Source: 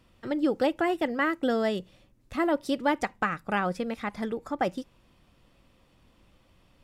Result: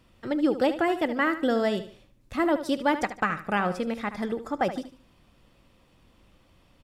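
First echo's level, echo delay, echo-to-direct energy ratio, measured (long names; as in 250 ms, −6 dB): −12.0 dB, 74 ms, −11.5 dB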